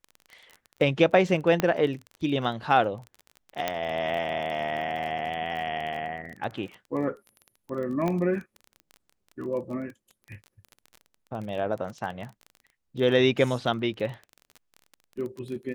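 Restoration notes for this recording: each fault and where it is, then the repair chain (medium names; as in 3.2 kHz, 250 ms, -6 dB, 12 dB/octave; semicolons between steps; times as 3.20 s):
crackle 23 per s -34 dBFS
1.60 s: pop -10 dBFS
3.68 s: pop -11 dBFS
8.08 s: pop -16 dBFS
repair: de-click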